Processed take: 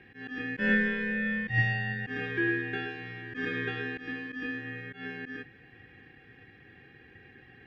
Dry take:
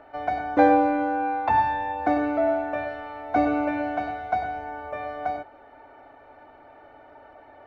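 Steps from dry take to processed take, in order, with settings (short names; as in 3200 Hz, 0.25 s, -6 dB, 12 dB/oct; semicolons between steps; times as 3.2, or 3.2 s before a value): auto swell 0.136 s; inverse Chebyshev high-pass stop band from 310 Hz, stop band 40 dB; ring modulator 1000 Hz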